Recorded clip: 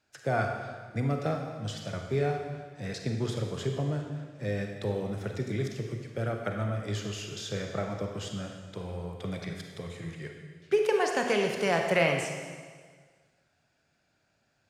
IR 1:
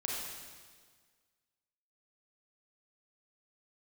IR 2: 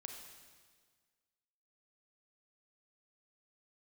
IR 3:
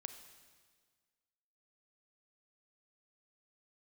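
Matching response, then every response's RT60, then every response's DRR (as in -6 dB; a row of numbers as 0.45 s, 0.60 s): 2; 1.6 s, 1.6 s, 1.6 s; -3.5 dB, 2.5 dB, 8.0 dB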